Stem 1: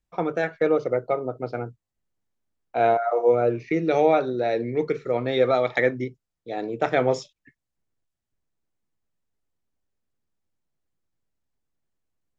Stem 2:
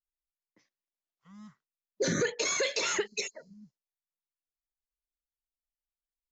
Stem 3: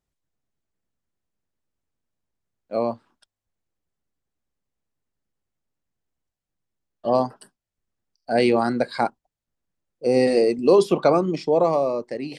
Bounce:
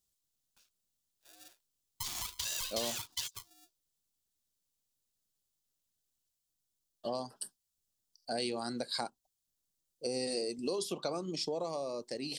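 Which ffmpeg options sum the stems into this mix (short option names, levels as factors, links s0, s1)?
-filter_complex "[1:a]acrossover=split=430 4100:gain=0.178 1 0.178[s0][s1][s2];[s0][s1][s2]amix=inputs=3:normalize=0,acompressor=threshold=0.01:ratio=8,aeval=exprs='val(0)*sgn(sin(2*PI*520*n/s))':c=same,volume=0.596[s3];[2:a]acompressor=threshold=0.0501:ratio=4,volume=0.355[s4];[s3][s4]amix=inputs=2:normalize=0,aexciter=amount=3.3:drive=8.7:freq=3100"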